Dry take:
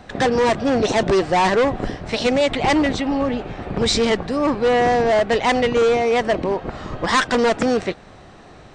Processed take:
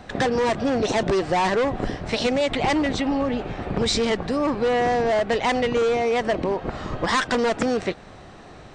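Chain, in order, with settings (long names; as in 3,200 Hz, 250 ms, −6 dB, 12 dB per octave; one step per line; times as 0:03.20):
downward compressor, threshold −19 dBFS, peak gain reduction 5 dB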